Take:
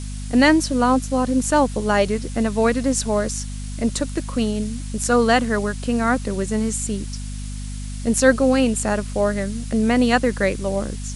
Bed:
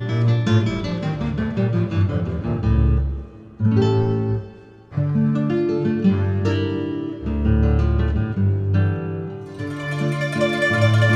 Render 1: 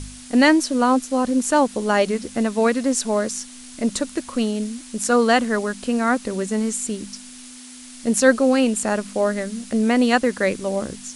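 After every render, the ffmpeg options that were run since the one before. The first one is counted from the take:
-af "bandreject=f=50:t=h:w=4,bandreject=f=100:t=h:w=4,bandreject=f=150:t=h:w=4,bandreject=f=200:t=h:w=4"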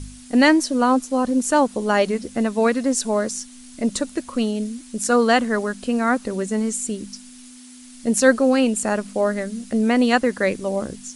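-af "afftdn=nr=6:nf=-41"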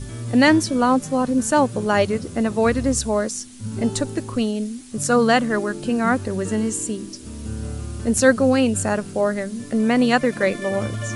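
-filter_complex "[1:a]volume=-12.5dB[a];[0:a][a]amix=inputs=2:normalize=0"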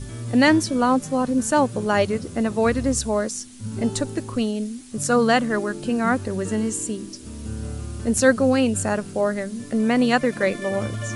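-af "volume=-1.5dB"

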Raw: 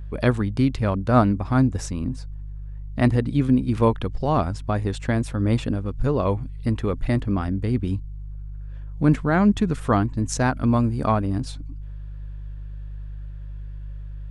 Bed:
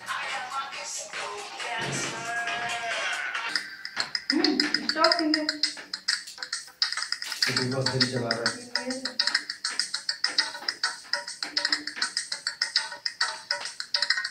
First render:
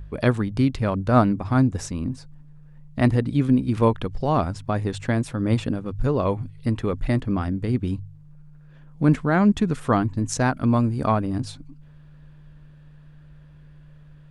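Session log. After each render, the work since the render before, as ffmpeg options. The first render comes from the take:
-af "bandreject=f=50:t=h:w=4,bandreject=f=100:t=h:w=4"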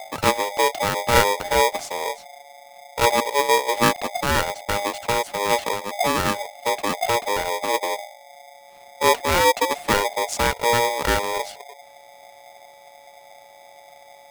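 -af "aeval=exprs='val(0)*sgn(sin(2*PI*710*n/s))':c=same"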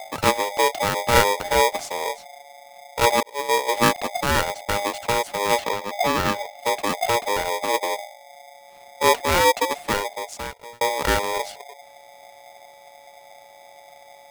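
-filter_complex "[0:a]asettb=1/sr,asplit=3[a][b][c];[a]atrim=end=5.614[d];[b]atrim=start=5.61:end=6.59,asetpts=PTS-STARTPTS,afade=t=in:d=0.004:c=qsin,afade=t=out:st=0.976:d=0.004:c=qsin,equalizer=f=9.7k:t=o:w=0.89:g=-6.5[e];[c]atrim=start=6.586[f];[d][e]acrossfade=d=0.004:c1=hsin:c2=qsin[g];[g][f]acrossfade=d=0.004:c1=qsin:c2=hsin,asplit=3[h][i][j];[h]atrim=end=3.23,asetpts=PTS-STARTPTS,afade=t=out:st=3.226:d=0.004:c=hsin[k];[i]atrim=start=3.23:end=10.81,asetpts=PTS-STARTPTS,afade=t=in:d=0.41,afade=t=out:st=6.23:d=1.35[l];[j]atrim=start=10.81,asetpts=PTS-STARTPTS,afade=t=in:d=0.004:c=hsin[m];[k][l][m]concat=n=3:v=0:a=1"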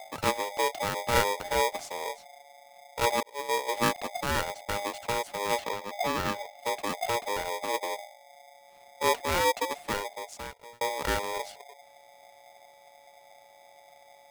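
-af "volume=-8dB"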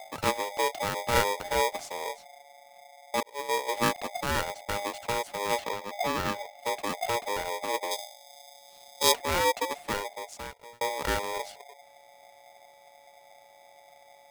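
-filter_complex "[0:a]asettb=1/sr,asplit=3[a][b][c];[a]atrim=end=7.914[d];[b]atrim=start=7.91:end=9.12,asetpts=PTS-STARTPTS,afade=t=in:d=0.004:c=qsin,afade=t=out:st=1.206:d=0.004:c=qsin,highshelf=f=2.9k:t=q:w=1.5:g=9[e];[c]atrim=start=9.116[f];[d][e]acrossfade=d=0.004:c1=hsin:c2=qsin[g];[g][f]acrossfade=d=0.004:c1=qsin:c2=hsin,asplit=6[h][i][j][k][l][m];[h]atrim=end=2.942[n];[i]atrim=start=2.888:end=2.942[o];[j]atrim=start=2.888:end=2.942[p];[k]atrim=start=2.888:end=2.942[q];[l]atrim=start=2.888:end=2.942[r];[m]atrim=start=3.138[s];[n][o]acrossfade=d=0.004:c1=hsin:c2=hsin[t];[t][p]acrossfade=d=0.004:c1=hsin:c2=hsin[u];[u][q]acrossfade=d=0.004:c1=hsin:c2=hsin[v];[v][r]acrossfade=d=0.004:c1=hsin:c2=hsin[w];[w][s]acrossfade=d=0.004:c1=hsin:c2=hsin"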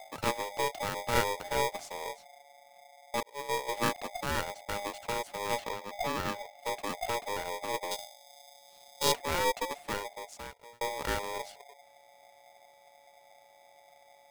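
-af "aeval=exprs='(tanh(5.62*val(0)+0.7)-tanh(0.7))/5.62':c=same"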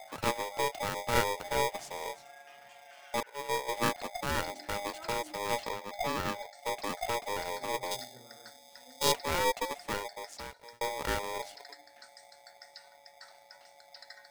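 -filter_complex "[1:a]volume=-26.5dB[a];[0:a][a]amix=inputs=2:normalize=0"

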